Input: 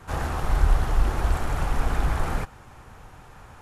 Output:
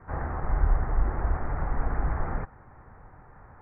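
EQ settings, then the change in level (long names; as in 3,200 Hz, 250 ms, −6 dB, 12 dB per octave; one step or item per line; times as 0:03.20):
elliptic low-pass filter 2,000 Hz, stop band 50 dB
high-frequency loss of the air 320 metres
−2.5 dB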